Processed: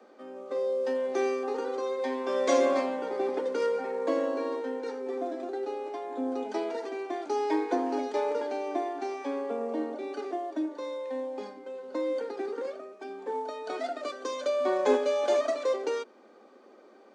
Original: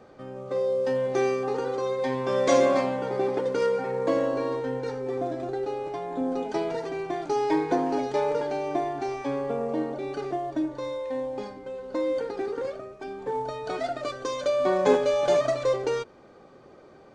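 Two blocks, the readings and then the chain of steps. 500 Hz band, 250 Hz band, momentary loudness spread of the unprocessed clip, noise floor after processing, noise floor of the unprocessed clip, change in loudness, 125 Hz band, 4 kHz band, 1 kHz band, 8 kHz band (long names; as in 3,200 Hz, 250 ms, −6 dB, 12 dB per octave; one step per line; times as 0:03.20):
−3.5 dB, −3.5 dB, 10 LU, −55 dBFS, −51 dBFS, −3.5 dB, below −20 dB, −3.5 dB, −3.5 dB, can't be measured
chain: Butterworth high-pass 210 Hz 96 dB per octave
level −3.5 dB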